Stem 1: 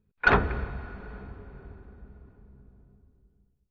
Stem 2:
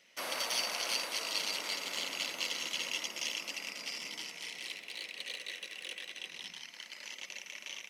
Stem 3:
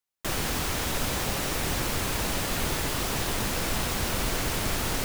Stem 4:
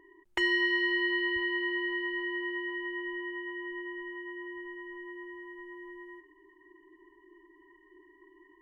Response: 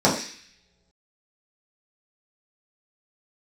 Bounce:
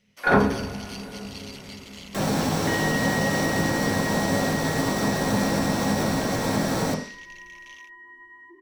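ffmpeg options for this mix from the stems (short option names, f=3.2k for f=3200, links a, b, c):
-filter_complex "[0:a]volume=-7dB,asplit=2[a][b];[b]volume=-12dB[c];[1:a]volume=-7dB[d];[2:a]alimiter=level_in=1dB:limit=-24dB:level=0:latency=1:release=270,volume=-1dB,adelay=1900,volume=-2.5dB,asplit=2[e][f];[f]volume=-7.5dB[g];[3:a]acompressor=threshold=-41dB:ratio=1.5,adelay=2300,volume=-5dB,asplit=2[h][i];[i]volume=-9.5dB[j];[4:a]atrim=start_sample=2205[k];[c][g][j]amix=inputs=3:normalize=0[l];[l][k]afir=irnorm=-1:irlink=0[m];[a][d][e][h][m]amix=inputs=5:normalize=0"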